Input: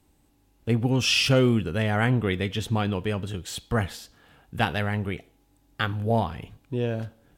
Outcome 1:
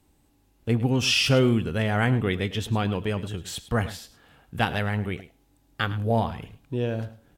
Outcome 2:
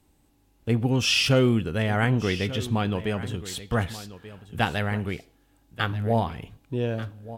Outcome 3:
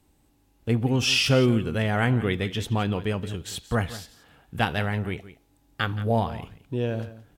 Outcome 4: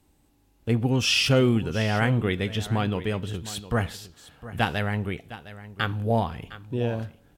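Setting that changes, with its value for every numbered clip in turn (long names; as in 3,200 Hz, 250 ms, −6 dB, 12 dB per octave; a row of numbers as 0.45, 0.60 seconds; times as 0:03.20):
single-tap delay, delay time: 106, 1,185, 173, 709 milliseconds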